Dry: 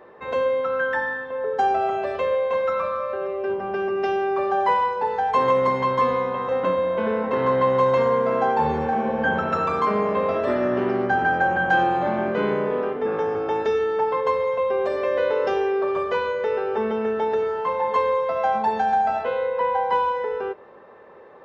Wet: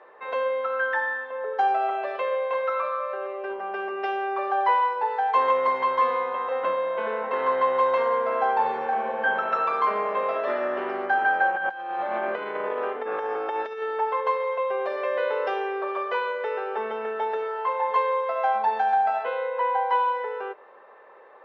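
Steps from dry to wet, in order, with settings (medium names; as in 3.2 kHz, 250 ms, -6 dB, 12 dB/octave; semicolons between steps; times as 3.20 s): 11.50–13.82 s: compressor with a negative ratio -24 dBFS, ratio -0.5; band-pass 610–3400 Hz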